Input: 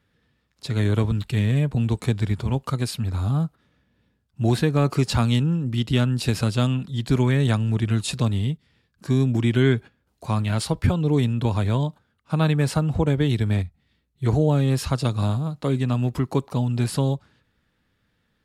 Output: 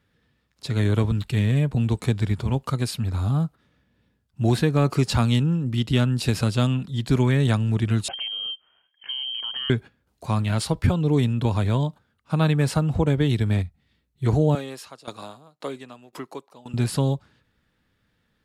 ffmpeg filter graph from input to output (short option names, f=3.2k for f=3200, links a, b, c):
-filter_complex "[0:a]asettb=1/sr,asplit=3[a][b][c];[a]atrim=end=8.084[d];[b]atrim=start=8.08:end=9.7,asetpts=PTS-STARTPTS,afade=t=in:d=0.004:c=qsin,afade=t=out:st=1.616:d=0.004:c=qsin,lowpass=f=2.8k:t=q:w=0.5098,lowpass=f=2.8k:t=q:w=0.6013,lowpass=f=2.8k:t=q:w=0.9,lowpass=f=2.8k:t=q:w=2.563,afreqshift=-3300,acompressor=threshold=-28dB:ratio=5:attack=3.2:release=140:knee=1:detection=peak[e];[c]atrim=start=9.696[f];[d][e]acrossfade=d=0.004:c1=hsin:c2=qsin[g];[g][f]acrossfade=d=0.004:c1=qsin:c2=hsin,asettb=1/sr,asplit=3[h][i][j];[h]atrim=end=14.554[k];[i]atrim=start=14.55:end=16.74,asetpts=PTS-STARTPTS,afade=t=in:d=0.004:c=qsin,afade=t=out:st=2.186:d=0.004:c=qsin,highpass=400,aeval=exprs='val(0)*pow(10,-19*if(lt(mod(1.9*n/s,1),2*abs(1.9)/1000),1-mod(1.9*n/s,1)/(2*abs(1.9)/1000),(mod(1.9*n/s,1)-2*abs(1.9)/1000)/(1-2*abs(1.9)/1000))/20)':c=same[l];[j]atrim=start=16.736[m];[k][l]acrossfade=d=0.004:c1=hsin:c2=qsin[n];[n][m]acrossfade=d=0.004:c1=qsin:c2=hsin"